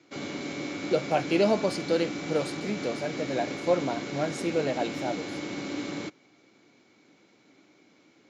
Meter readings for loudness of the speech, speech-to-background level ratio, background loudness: -29.5 LUFS, 5.5 dB, -35.0 LUFS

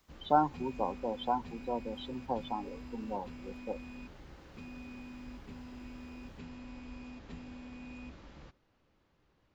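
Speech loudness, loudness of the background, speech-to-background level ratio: -35.5 LUFS, -48.5 LUFS, 13.0 dB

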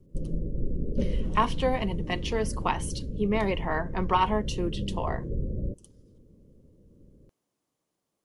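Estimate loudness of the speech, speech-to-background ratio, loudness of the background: -29.5 LUFS, 5.5 dB, -35.0 LUFS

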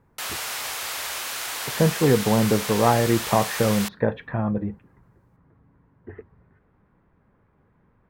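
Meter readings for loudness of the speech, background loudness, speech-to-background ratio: -22.5 LUFS, -28.5 LUFS, 6.0 dB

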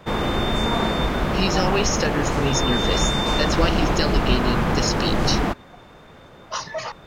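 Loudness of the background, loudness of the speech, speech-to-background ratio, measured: -22.5 LUFS, -25.5 LUFS, -3.0 dB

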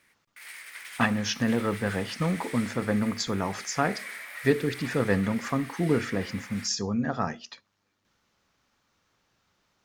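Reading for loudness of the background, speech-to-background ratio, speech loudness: -41.0 LUFS, 12.5 dB, -28.5 LUFS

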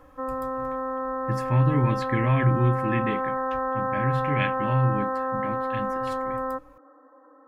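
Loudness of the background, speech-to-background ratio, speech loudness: -28.5 LUFS, 2.0 dB, -26.5 LUFS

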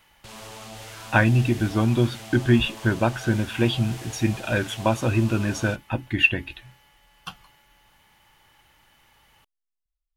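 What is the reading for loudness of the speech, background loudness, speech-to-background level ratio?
-23.0 LUFS, -39.5 LUFS, 16.5 dB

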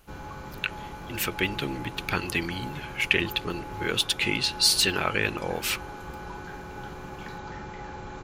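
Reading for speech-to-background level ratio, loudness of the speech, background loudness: 13.0 dB, -26.5 LUFS, -39.5 LUFS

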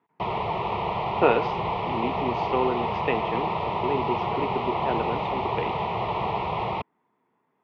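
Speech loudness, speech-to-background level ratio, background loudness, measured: -29.5 LUFS, -1.5 dB, -28.0 LUFS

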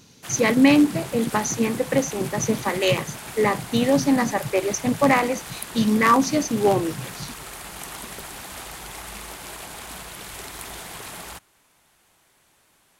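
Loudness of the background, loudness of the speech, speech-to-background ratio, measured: -35.5 LUFS, -21.5 LUFS, 14.0 dB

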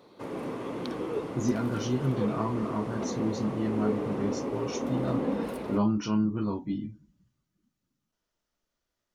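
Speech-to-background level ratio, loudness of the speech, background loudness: 3.0 dB, -31.0 LUFS, -34.0 LUFS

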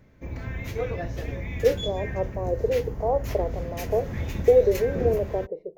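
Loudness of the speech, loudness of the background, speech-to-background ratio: -25.5 LUFS, -33.0 LUFS, 7.5 dB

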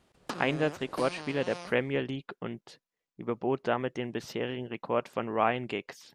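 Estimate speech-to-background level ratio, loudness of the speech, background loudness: 10.0 dB, -32.0 LUFS, -42.0 LUFS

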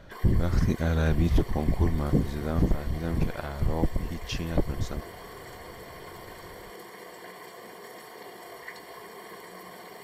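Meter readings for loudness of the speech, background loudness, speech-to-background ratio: -28.5 LUFS, -44.0 LUFS, 15.5 dB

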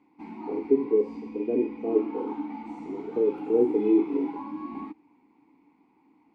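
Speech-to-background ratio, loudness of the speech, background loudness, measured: 10.5 dB, -26.5 LUFS, -37.0 LUFS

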